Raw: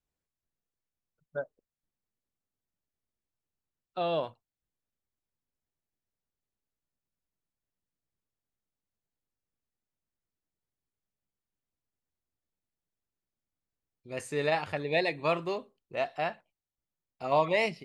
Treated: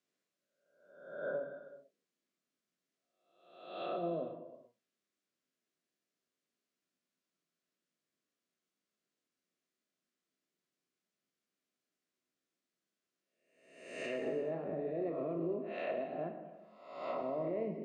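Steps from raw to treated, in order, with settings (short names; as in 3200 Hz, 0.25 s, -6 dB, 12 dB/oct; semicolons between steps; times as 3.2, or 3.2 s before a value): spectral swells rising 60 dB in 0.87 s; HPF 190 Hz 24 dB/oct; treble ducked by the level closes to 380 Hz, closed at -28.5 dBFS; LPF 7300 Hz 12 dB/oct; bell 860 Hz -14.5 dB 0.26 oct; limiter -33 dBFS, peak gain reduction 9 dB; non-linear reverb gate 0.47 s falling, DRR 4 dB; gain +2 dB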